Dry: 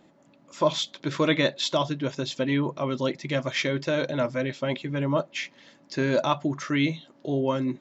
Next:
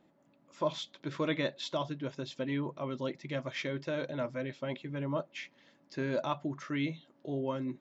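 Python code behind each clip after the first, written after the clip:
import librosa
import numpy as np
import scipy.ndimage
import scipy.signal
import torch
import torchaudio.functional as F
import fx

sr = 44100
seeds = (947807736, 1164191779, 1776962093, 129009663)

y = fx.high_shelf(x, sr, hz=4700.0, db=-8.0)
y = y * 10.0 ** (-9.0 / 20.0)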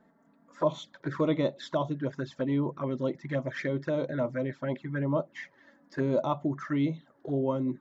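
y = fx.env_flanger(x, sr, rest_ms=4.7, full_db=-32.0)
y = fx.high_shelf_res(y, sr, hz=2100.0, db=-6.5, q=3.0)
y = y * 10.0 ** (6.5 / 20.0)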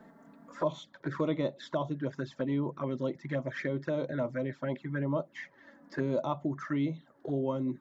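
y = fx.band_squash(x, sr, depth_pct=40)
y = y * 10.0 ** (-3.0 / 20.0)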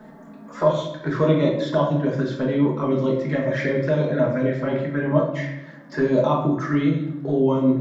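y = fx.room_shoebox(x, sr, seeds[0], volume_m3=290.0, walls='mixed', distance_m=1.4)
y = y * 10.0 ** (7.5 / 20.0)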